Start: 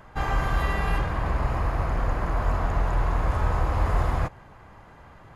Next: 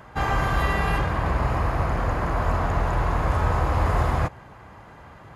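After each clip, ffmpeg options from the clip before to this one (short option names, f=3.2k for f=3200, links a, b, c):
-af "highpass=55,volume=4dB"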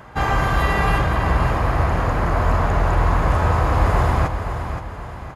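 -af "aecho=1:1:522|1044|1566|2088|2610:0.376|0.162|0.0695|0.0299|0.0128,volume=4dB"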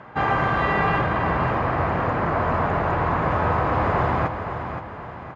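-af "highpass=130,lowpass=2.7k"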